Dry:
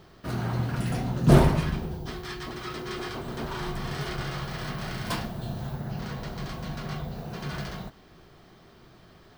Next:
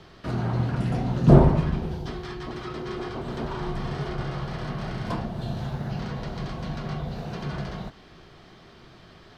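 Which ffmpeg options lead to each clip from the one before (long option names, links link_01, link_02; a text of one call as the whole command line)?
ffmpeg -i in.wav -filter_complex "[0:a]lowpass=3700,aemphasis=mode=production:type=75kf,acrossover=split=270|1100[link_01][link_02][link_03];[link_03]acompressor=threshold=-46dB:ratio=10[link_04];[link_01][link_02][link_04]amix=inputs=3:normalize=0,volume=3dB" out.wav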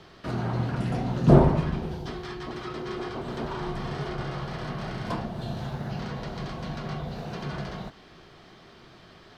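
ffmpeg -i in.wav -af "lowshelf=frequency=140:gain=-5.5" out.wav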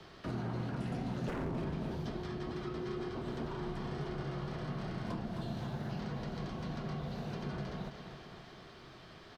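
ffmpeg -i in.wav -filter_complex "[0:a]aecho=1:1:261|522|783|1044|1305|1566:0.251|0.143|0.0816|0.0465|0.0265|0.0151,aeval=exprs='0.112*(abs(mod(val(0)/0.112+3,4)-2)-1)':channel_layout=same,acrossover=split=170|390|1200[link_01][link_02][link_03][link_04];[link_01]acompressor=threshold=-40dB:ratio=4[link_05];[link_02]acompressor=threshold=-36dB:ratio=4[link_06];[link_03]acompressor=threshold=-46dB:ratio=4[link_07];[link_04]acompressor=threshold=-49dB:ratio=4[link_08];[link_05][link_06][link_07][link_08]amix=inputs=4:normalize=0,volume=-3dB" out.wav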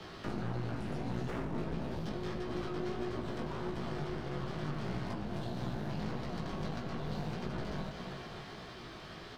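ffmpeg -i in.wav -af "alimiter=level_in=9dB:limit=-24dB:level=0:latency=1:release=212,volume=-9dB,aeval=exprs='clip(val(0),-1,0.00335)':channel_layout=same,flanger=delay=16:depth=3.9:speed=1.6,volume=9.5dB" out.wav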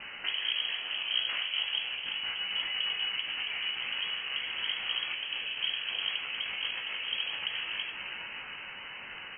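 ffmpeg -i in.wav -filter_complex "[0:a]acrossover=split=280[link_01][link_02];[link_01]acrusher=bits=4:mix=0:aa=0.5[link_03];[link_03][link_02]amix=inputs=2:normalize=0,lowpass=frequency=2800:width_type=q:width=0.5098,lowpass=frequency=2800:width_type=q:width=0.6013,lowpass=frequency=2800:width_type=q:width=0.9,lowpass=frequency=2800:width_type=q:width=2.563,afreqshift=-3300,volume=7.5dB" out.wav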